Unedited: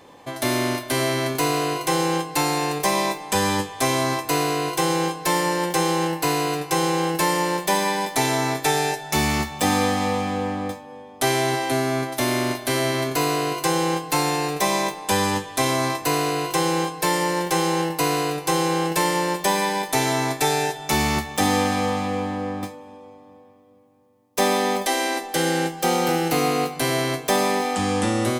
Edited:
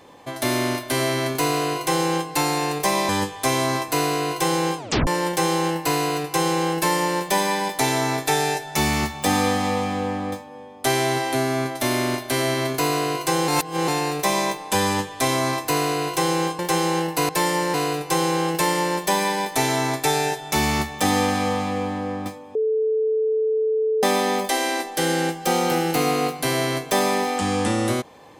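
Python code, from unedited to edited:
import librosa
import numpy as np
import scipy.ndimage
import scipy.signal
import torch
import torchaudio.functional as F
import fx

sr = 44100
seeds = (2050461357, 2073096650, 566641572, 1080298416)

y = fx.edit(x, sr, fx.cut(start_s=3.09, length_s=0.37),
    fx.tape_stop(start_s=5.15, length_s=0.29),
    fx.reverse_span(start_s=13.85, length_s=0.4),
    fx.move(start_s=16.96, length_s=0.45, to_s=18.11),
    fx.bleep(start_s=22.92, length_s=1.48, hz=438.0, db=-18.0), tone=tone)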